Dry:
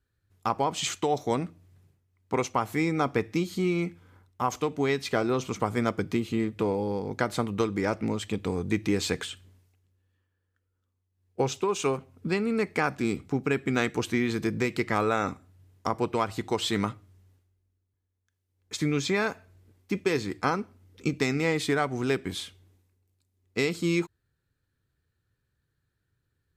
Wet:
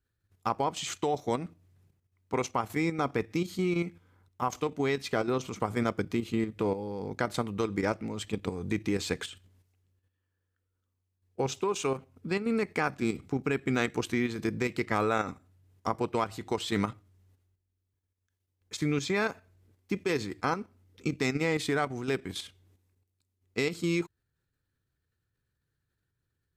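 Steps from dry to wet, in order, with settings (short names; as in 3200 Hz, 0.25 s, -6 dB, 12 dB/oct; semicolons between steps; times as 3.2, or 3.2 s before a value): level quantiser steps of 9 dB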